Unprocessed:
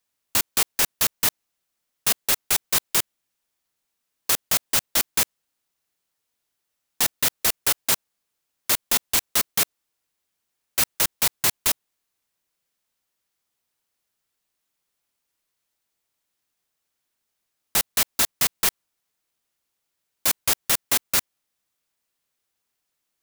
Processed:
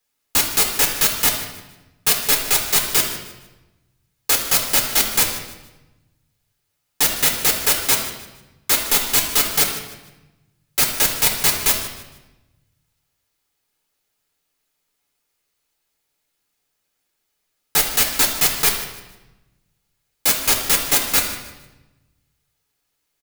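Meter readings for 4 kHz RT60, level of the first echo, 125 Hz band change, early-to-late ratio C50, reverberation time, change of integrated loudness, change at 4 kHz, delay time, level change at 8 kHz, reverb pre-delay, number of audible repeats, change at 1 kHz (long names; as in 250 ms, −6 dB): 0.90 s, −15.0 dB, +6.5 dB, 5.5 dB, 1.1 s, +5.0 dB, +5.5 dB, 153 ms, +5.0 dB, 7 ms, 1, +5.5 dB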